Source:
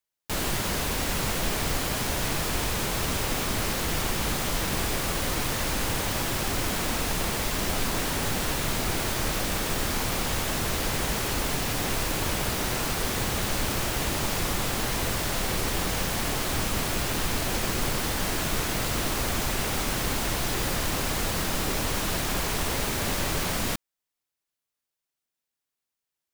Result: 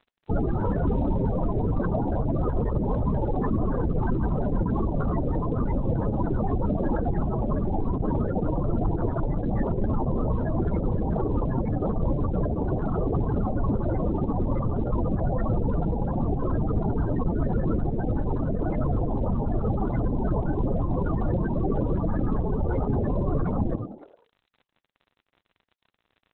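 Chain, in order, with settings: dynamic bell 3.2 kHz, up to -6 dB, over -47 dBFS, Q 0.95; resampled via 11.025 kHz; in parallel at -6.5 dB: fuzz box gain 53 dB, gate -53 dBFS; 8.50–8.94 s: on the sum: distance through air 84 m; 18.37–20.16 s: de-hum 374.7 Hz, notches 30; on a send: frequency-shifting echo 97 ms, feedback 44%, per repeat +90 Hz, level -9 dB; on the sum: peak limiter -14 dBFS, peak gain reduction 6 dB; loudest bins only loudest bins 16; crackle 53 per s -41 dBFS; trim -1 dB; Opus 8 kbps 48 kHz

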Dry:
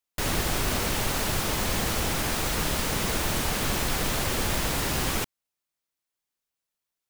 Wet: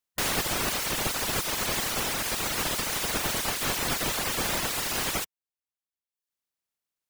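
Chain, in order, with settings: spectral peaks clipped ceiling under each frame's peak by 16 dB; reverb removal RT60 0.93 s

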